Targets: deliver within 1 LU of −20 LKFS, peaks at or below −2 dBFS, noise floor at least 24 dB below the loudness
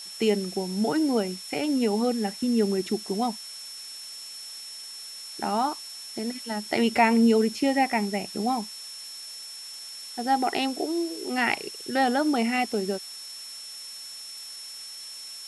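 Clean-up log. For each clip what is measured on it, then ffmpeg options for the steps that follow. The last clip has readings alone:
interfering tone 5,400 Hz; level of the tone −39 dBFS; background noise floor −41 dBFS; target noise floor −52 dBFS; integrated loudness −27.5 LKFS; sample peak −9.0 dBFS; target loudness −20.0 LKFS
→ -af "bandreject=frequency=5400:width=30"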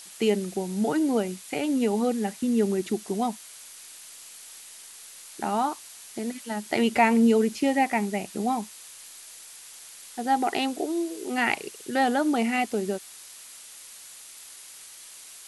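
interfering tone none found; background noise floor −46 dBFS; target noise floor −50 dBFS
→ -af "afftdn=noise_reduction=6:noise_floor=-46"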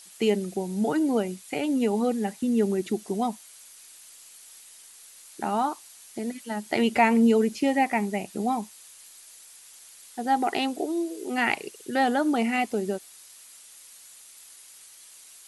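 background noise floor −50 dBFS; integrated loudness −26.0 LKFS; sample peak −9.0 dBFS; target loudness −20.0 LKFS
→ -af "volume=6dB"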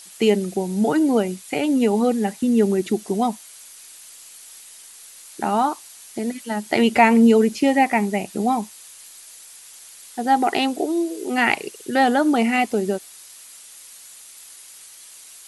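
integrated loudness −20.0 LKFS; sample peak −3.0 dBFS; background noise floor −44 dBFS

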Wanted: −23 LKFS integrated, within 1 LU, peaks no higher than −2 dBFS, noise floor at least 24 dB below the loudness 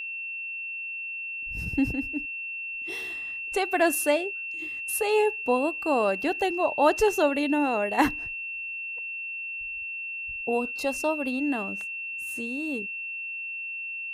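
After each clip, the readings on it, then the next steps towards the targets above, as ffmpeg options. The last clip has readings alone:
interfering tone 2,700 Hz; level of the tone −32 dBFS; integrated loudness −27.5 LKFS; sample peak −8.5 dBFS; target loudness −23.0 LKFS
→ -af "bandreject=frequency=2700:width=30"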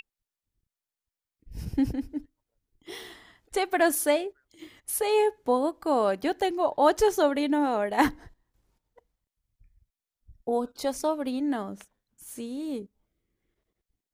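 interfering tone none found; integrated loudness −27.0 LKFS; sample peak −8.5 dBFS; target loudness −23.0 LKFS
→ -af "volume=4dB"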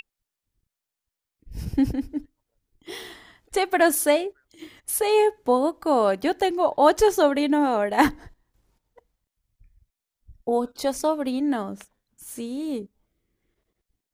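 integrated loudness −23.0 LKFS; sample peak −4.5 dBFS; background noise floor −87 dBFS

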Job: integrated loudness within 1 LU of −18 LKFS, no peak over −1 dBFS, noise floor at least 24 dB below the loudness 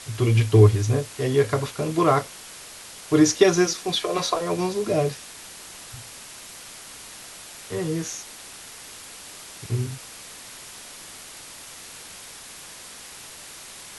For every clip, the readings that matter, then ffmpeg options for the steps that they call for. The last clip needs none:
background noise floor −42 dBFS; target noise floor −46 dBFS; integrated loudness −22.0 LKFS; sample peak −3.0 dBFS; target loudness −18.0 LKFS
→ -af "afftdn=noise_reduction=6:noise_floor=-42"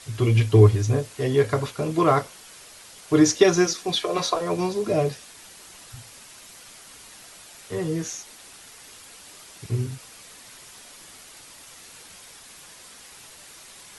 background noise floor −47 dBFS; integrated loudness −22.0 LKFS; sample peak −3.0 dBFS; target loudness −18.0 LKFS
→ -af "volume=4dB,alimiter=limit=-1dB:level=0:latency=1"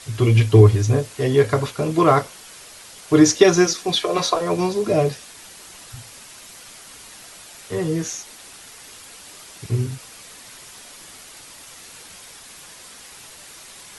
integrated loudness −18.5 LKFS; sample peak −1.0 dBFS; background noise floor −43 dBFS

